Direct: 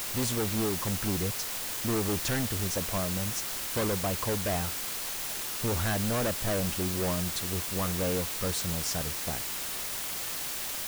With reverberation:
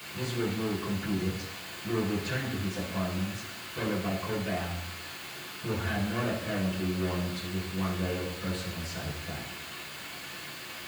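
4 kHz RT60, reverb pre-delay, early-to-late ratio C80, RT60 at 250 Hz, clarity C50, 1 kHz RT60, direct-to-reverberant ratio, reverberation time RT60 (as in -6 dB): 0.90 s, 3 ms, 8.5 dB, 0.80 s, 5.5 dB, 0.85 s, -7.0 dB, 0.85 s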